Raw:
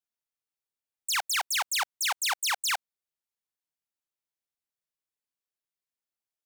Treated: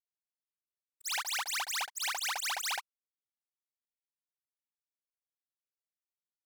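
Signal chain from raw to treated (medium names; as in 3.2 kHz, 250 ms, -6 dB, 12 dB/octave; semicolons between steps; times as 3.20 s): short-time spectra conjugated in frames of 140 ms; in parallel at +1 dB: level held to a coarse grid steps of 19 dB; on the sum: crossover distortion -47.5 dBFS; trim -5.5 dB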